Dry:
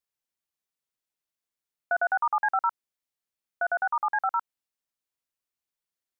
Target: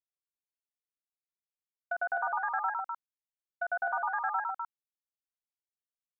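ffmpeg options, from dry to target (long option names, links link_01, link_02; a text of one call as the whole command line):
ffmpeg -i in.wav -af "agate=range=-33dB:threshold=-25dB:ratio=3:detection=peak,alimiter=limit=-22.5dB:level=0:latency=1,acompressor=threshold=-32dB:ratio=6,aecho=1:1:107.9|253.6:0.891|0.708,volume=1.5dB" out.wav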